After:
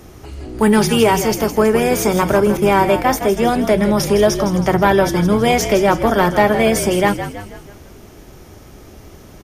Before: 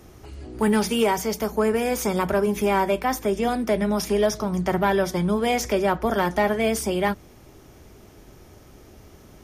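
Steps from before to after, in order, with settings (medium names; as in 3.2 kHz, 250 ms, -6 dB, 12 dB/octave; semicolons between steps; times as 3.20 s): 2.57–3.10 s: gate -28 dBFS, range -14 dB; frequency-shifting echo 161 ms, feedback 49%, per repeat -52 Hz, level -10 dB; trim +7.5 dB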